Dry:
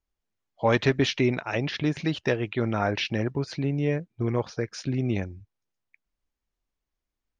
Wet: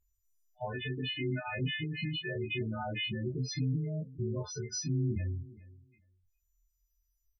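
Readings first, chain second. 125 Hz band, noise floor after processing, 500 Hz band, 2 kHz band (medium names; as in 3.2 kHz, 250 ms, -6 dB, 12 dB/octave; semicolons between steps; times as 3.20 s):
-5.0 dB, -78 dBFS, -13.0 dB, -7.5 dB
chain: partials quantised in pitch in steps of 3 st; gate -45 dBFS, range -28 dB; low-pass that closes with the level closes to 2.6 kHz, closed at -22 dBFS; bass shelf 90 Hz +12 dB; compression 16:1, threshold -23 dBFS, peak gain reduction 9 dB; peak limiter -25.5 dBFS, peak gain reduction 10.5 dB; upward compressor, threshold -51 dBFS; feedback delay 413 ms, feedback 17%, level -19.5 dB; loudest bins only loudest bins 8; doubling 24 ms -3.5 dB; trim -1.5 dB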